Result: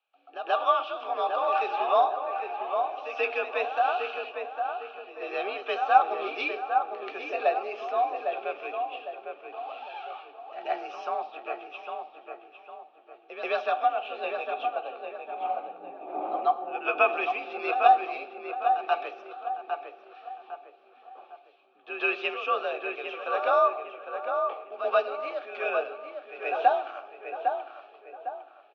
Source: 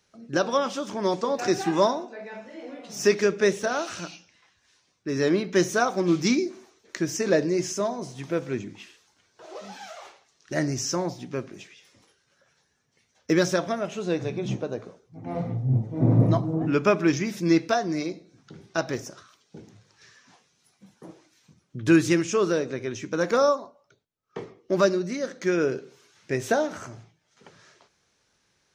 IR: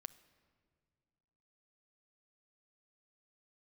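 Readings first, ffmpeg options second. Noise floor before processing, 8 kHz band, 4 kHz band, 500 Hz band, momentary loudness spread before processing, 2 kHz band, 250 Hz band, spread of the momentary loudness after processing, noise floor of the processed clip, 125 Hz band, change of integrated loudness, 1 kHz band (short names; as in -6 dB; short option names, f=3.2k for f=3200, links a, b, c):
-70 dBFS, under -30 dB, -5.0 dB, -4.0 dB, 19 LU, -0.5 dB, -21.0 dB, 17 LU, -56 dBFS, under -40 dB, -3.5 dB, +7.5 dB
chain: -filter_complex "[0:a]asplit=3[a][b][c];[a]bandpass=f=730:t=q:w=8,volume=0dB[d];[b]bandpass=f=1.09k:t=q:w=8,volume=-6dB[e];[c]bandpass=f=2.44k:t=q:w=8,volume=-9dB[f];[d][e][f]amix=inputs=3:normalize=0,highpass=f=220:t=q:w=0.5412,highpass=f=220:t=q:w=1.307,lowpass=f=3.5k:t=q:w=0.5176,lowpass=f=3.5k:t=q:w=0.7071,lowpass=f=3.5k:t=q:w=1.932,afreqshift=54,asplit=2[g][h];[h]adelay=805,lowpass=f=1.8k:p=1,volume=-5dB,asplit=2[i][j];[j]adelay=805,lowpass=f=1.8k:p=1,volume=0.42,asplit=2[k][l];[l]adelay=805,lowpass=f=1.8k:p=1,volume=0.42,asplit=2[m][n];[n]adelay=805,lowpass=f=1.8k:p=1,volume=0.42,asplit=2[o][p];[p]adelay=805,lowpass=f=1.8k:p=1,volume=0.42[q];[g][i][k][m][o][q]amix=inputs=6:normalize=0,asplit=2[r][s];[1:a]atrim=start_sample=2205,lowshelf=f=200:g=-10,adelay=133[t];[s][t]afir=irnorm=-1:irlink=0,volume=17dB[u];[r][u]amix=inputs=2:normalize=0,crystalizer=i=7:c=0,volume=-5dB"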